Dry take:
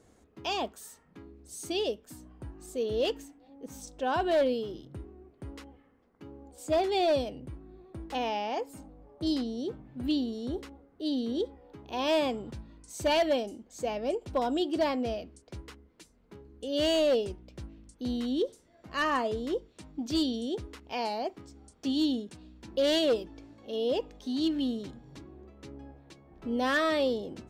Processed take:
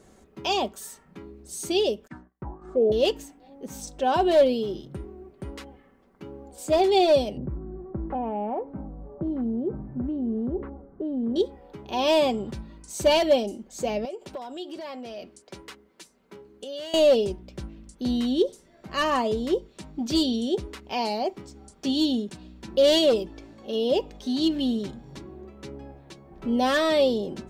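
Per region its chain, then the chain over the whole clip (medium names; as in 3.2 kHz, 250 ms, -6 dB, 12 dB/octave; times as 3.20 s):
2.07–2.92 s: gate -49 dBFS, range -37 dB + peaking EQ 820 Hz +2.5 dB 0.2 oct + touch-sensitive low-pass 630–2200 Hz down, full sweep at -35.5 dBFS
7.37–11.36 s: low-pass 1.5 kHz 24 dB/octave + bass shelf 390 Hz +7.5 dB + compression 3:1, threshold -33 dBFS
14.05–16.94 s: high-pass 390 Hz 6 dB/octave + compression 16:1, threshold -39 dBFS
whole clip: comb 5.2 ms, depth 42%; dynamic bell 1.6 kHz, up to -7 dB, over -48 dBFS, Q 1.5; trim +6.5 dB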